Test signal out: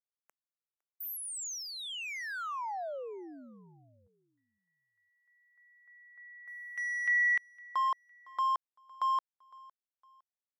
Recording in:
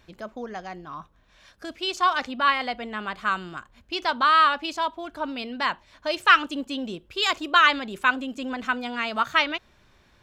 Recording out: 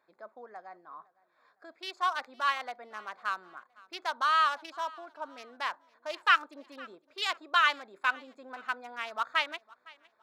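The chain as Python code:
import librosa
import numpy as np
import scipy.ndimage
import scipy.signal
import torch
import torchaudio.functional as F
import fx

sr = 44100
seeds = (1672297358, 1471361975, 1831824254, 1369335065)

p1 = fx.wiener(x, sr, points=15)
p2 = scipy.signal.sosfilt(scipy.signal.butter(2, 620.0, 'highpass', fs=sr, output='sos'), p1)
p3 = p2 + fx.echo_feedback(p2, sr, ms=509, feedback_pct=35, wet_db=-23.5, dry=0)
y = p3 * librosa.db_to_amplitude(-6.5)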